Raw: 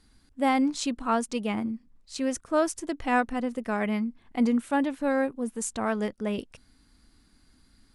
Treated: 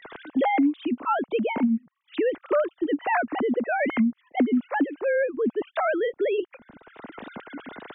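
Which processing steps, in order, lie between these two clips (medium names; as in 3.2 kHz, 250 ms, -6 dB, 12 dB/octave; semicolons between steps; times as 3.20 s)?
formants replaced by sine waves; three bands compressed up and down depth 100%; trim +3.5 dB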